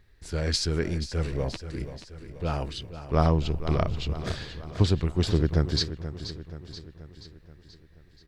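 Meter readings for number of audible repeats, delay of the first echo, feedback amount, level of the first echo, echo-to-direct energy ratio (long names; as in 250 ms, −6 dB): 5, 480 ms, 54%, −12.0 dB, −10.5 dB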